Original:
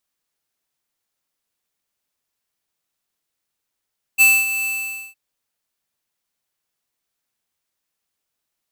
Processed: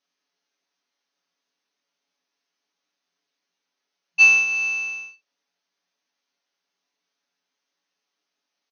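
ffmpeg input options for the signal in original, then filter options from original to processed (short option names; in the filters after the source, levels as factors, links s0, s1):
-f lavfi -i "aevalsrc='0.299*(2*lt(mod(2640*t,1),0.5)-1)':d=0.963:s=44100,afade=t=in:d=0.032,afade=t=out:st=0.032:d=0.24:silence=0.251,afade=t=out:st=0.47:d=0.493"
-filter_complex "[0:a]afftfilt=real='re*between(b*sr/4096,170,6500)':imag='im*between(b*sr/4096,170,6500)':win_size=4096:overlap=0.75,aecho=1:1:7.1:0.65,asplit=2[s0][s1];[s1]aecho=0:1:23|71:0.631|0.133[s2];[s0][s2]amix=inputs=2:normalize=0"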